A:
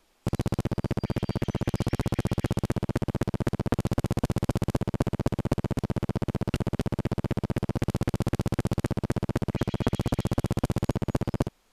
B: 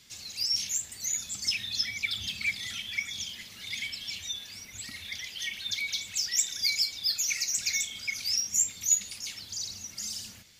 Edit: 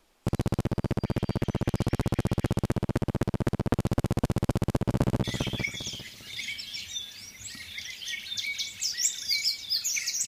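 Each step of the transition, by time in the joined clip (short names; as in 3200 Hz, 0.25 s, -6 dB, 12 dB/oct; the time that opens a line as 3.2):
A
4.48–5.24 echo throw 0.4 s, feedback 25%, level -4.5 dB
5.24 switch to B from 2.58 s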